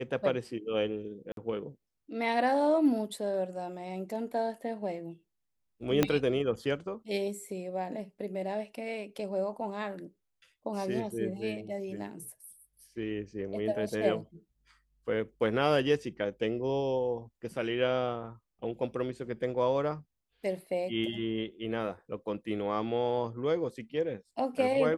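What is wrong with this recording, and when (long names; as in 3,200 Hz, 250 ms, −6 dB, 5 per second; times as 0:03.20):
0:01.32–0:01.37: drop-out 52 ms
0:06.03: click −10 dBFS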